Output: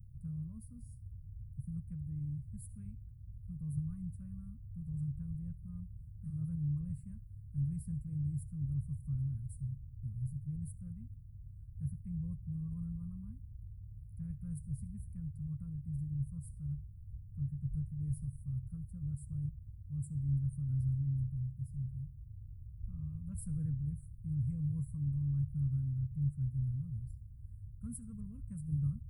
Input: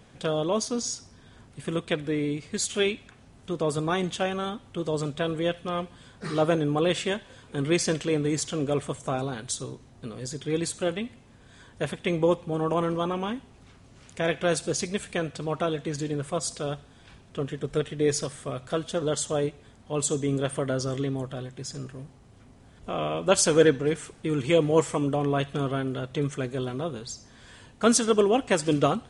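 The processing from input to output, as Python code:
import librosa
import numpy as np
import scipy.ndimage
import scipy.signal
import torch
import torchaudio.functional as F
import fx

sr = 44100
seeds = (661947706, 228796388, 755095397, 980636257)

y = scipy.signal.sosfilt(scipy.signal.cheby2(4, 60, [350.0, 6700.0], 'bandstop', fs=sr, output='sos'), x)
y = fx.peak_eq(y, sr, hz=1100.0, db=8.0, octaves=0.73)
y = F.gain(torch.from_numpy(y), 9.0).numpy()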